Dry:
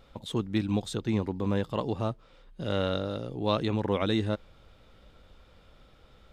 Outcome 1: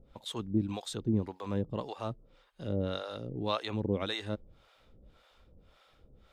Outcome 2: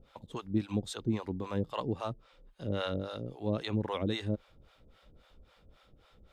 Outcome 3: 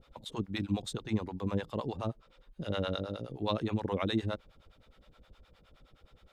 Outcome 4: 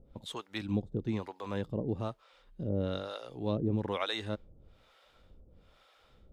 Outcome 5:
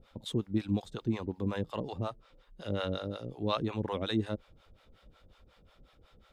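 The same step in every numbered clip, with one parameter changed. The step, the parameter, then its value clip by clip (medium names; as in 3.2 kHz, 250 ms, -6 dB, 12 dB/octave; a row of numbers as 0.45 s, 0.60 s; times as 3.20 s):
harmonic tremolo, rate: 1.8 Hz, 3.7 Hz, 9.6 Hz, 1.1 Hz, 5.5 Hz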